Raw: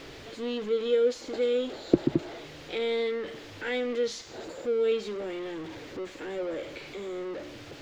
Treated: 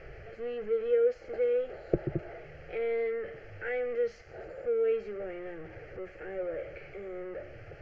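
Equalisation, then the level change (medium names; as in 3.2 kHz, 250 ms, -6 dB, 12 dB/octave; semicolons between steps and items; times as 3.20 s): distance through air 270 m; bass shelf 79 Hz +9.5 dB; static phaser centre 1 kHz, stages 6; 0.0 dB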